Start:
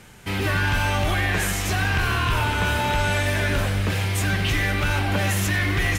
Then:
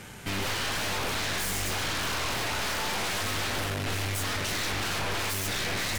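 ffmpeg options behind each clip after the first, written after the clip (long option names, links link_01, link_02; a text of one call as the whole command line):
ffmpeg -i in.wav -af "highpass=frequency=58:poles=1,aeval=exprs='0.0562*(abs(mod(val(0)/0.0562+3,4)-2)-1)':channel_layout=same,aeval=exprs='(tanh(50.1*val(0)+0.5)-tanh(0.5))/50.1':channel_layout=same,volume=5.5dB" out.wav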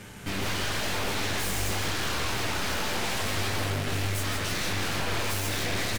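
ffmpeg -i in.wav -filter_complex "[0:a]flanger=delay=9.7:depth=9.2:regen=-42:speed=0.85:shape=sinusoidal,asplit=2[link_01][link_02];[link_02]acrusher=samples=32:mix=1:aa=0.000001:lfo=1:lforange=19.2:lforate=0.51,volume=-9.5dB[link_03];[link_01][link_03]amix=inputs=2:normalize=0,aecho=1:1:162:0.501,volume=2.5dB" out.wav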